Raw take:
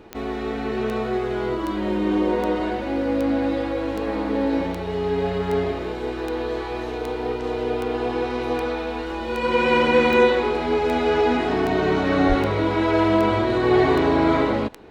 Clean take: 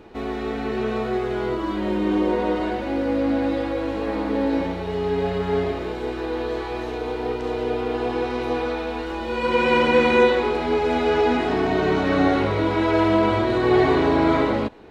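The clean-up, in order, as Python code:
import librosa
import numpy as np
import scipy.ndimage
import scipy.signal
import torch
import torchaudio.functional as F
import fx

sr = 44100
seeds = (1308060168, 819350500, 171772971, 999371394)

y = fx.fix_declick_ar(x, sr, threshold=10.0)
y = fx.highpass(y, sr, hz=140.0, slope=24, at=(12.28, 12.4), fade=0.02)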